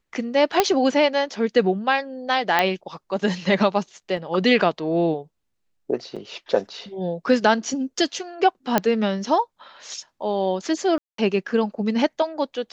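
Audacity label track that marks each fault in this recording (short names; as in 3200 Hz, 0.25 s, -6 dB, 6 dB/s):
0.600000	0.600000	pop -1 dBFS
2.590000	2.590000	pop -5 dBFS
4.170000	4.170000	gap 2.1 ms
6.160000	6.170000	gap 5.7 ms
8.780000	8.780000	pop -4 dBFS
10.980000	11.180000	gap 0.203 s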